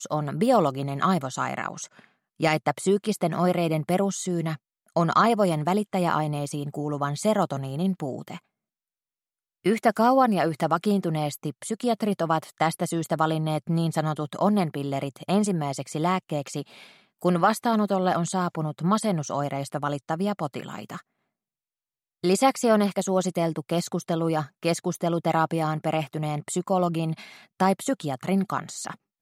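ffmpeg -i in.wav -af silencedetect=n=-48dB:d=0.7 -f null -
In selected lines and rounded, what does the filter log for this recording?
silence_start: 8.39
silence_end: 9.65 | silence_duration: 1.26
silence_start: 21.01
silence_end: 22.23 | silence_duration: 1.23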